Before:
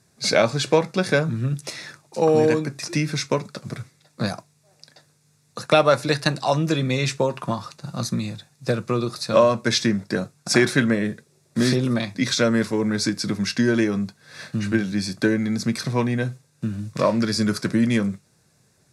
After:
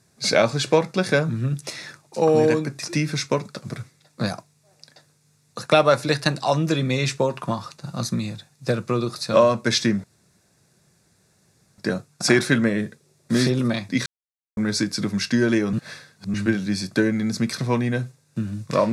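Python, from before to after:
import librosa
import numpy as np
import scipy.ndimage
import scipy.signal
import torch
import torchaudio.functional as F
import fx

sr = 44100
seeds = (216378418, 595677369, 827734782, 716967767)

y = fx.edit(x, sr, fx.insert_room_tone(at_s=10.04, length_s=1.74),
    fx.silence(start_s=12.32, length_s=0.51),
    fx.reverse_span(start_s=13.99, length_s=0.61), tone=tone)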